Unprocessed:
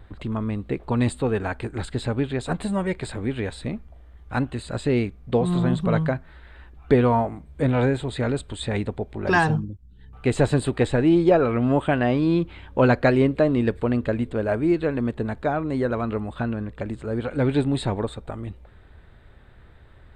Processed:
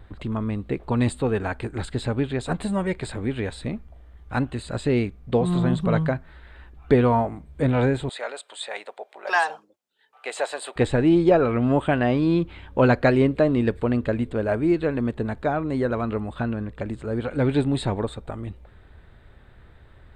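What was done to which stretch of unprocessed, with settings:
8.09–10.76 Chebyshev high-pass 610 Hz, order 3

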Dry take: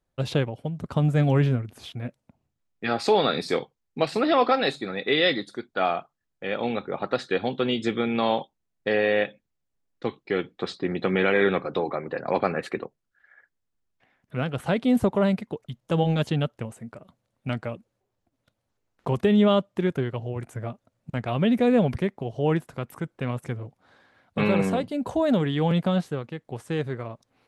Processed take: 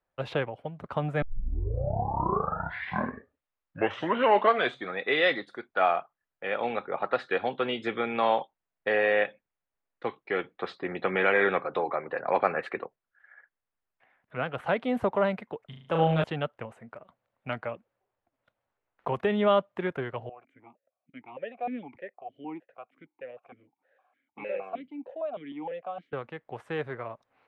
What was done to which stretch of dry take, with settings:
1.22 tape start 3.81 s
15.66–16.24 flutter echo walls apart 6.4 m, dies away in 0.59 s
20.29–26.13 vowel sequencer 6.5 Hz
whole clip: three-band isolator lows -13 dB, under 500 Hz, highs -21 dB, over 2800 Hz; gain +2 dB

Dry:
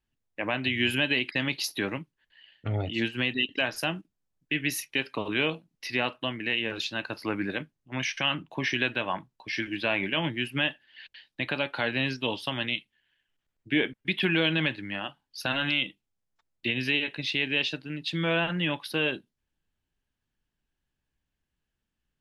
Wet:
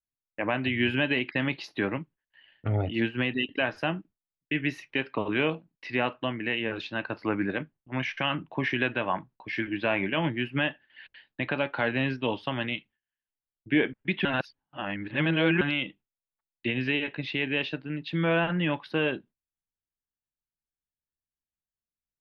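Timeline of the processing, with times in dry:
14.25–15.61 reverse
whole clip: LPF 2100 Hz 12 dB/oct; gate with hold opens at -55 dBFS; gain +2.5 dB

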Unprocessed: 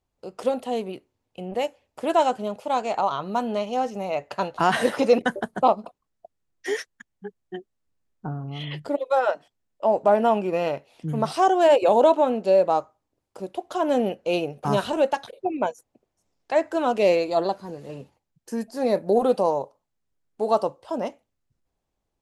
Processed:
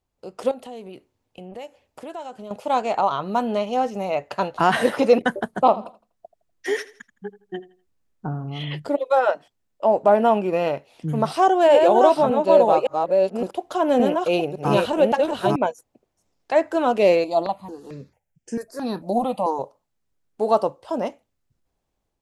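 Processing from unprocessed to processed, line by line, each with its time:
0.51–2.51 compressor 3:1, threshold -40 dBFS
5.48–8.74 feedback echo 82 ms, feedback 30%, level -17.5 dB
11.18–15.56 reverse delay 0.563 s, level -2.5 dB
17.24–19.59 step phaser 4.5 Hz 430–4000 Hz
whole clip: dynamic EQ 6400 Hz, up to -4 dB, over -45 dBFS, Q 0.97; AGC gain up to 3 dB

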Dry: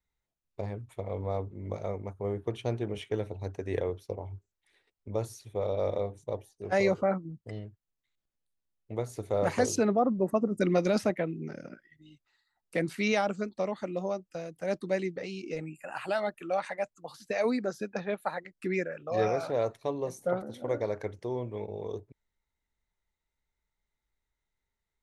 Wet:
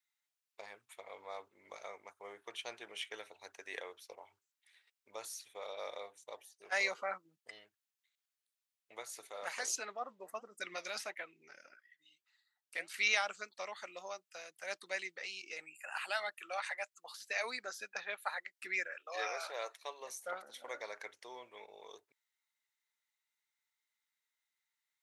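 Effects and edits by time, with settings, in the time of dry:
9.27–12.94 flange 1.6 Hz, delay 1.8 ms, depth 6 ms, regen +76%
18.97–20.01 brick-wall FIR high-pass 300 Hz
whole clip: HPF 1500 Hz 12 dB/oct; gain +2.5 dB

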